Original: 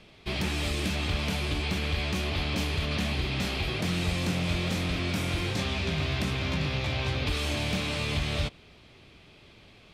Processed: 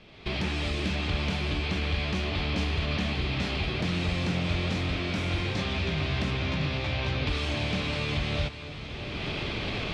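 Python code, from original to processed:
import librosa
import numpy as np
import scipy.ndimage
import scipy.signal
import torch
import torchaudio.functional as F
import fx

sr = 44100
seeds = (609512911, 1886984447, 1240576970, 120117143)

y = fx.recorder_agc(x, sr, target_db=-22.0, rise_db_per_s=28.0, max_gain_db=30)
y = scipy.signal.sosfilt(scipy.signal.butter(2, 4900.0, 'lowpass', fs=sr, output='sos'), y)
y = fx.echo_diffused(y, sr, ms=573, feedback_pct=44, wet_db=-11.5)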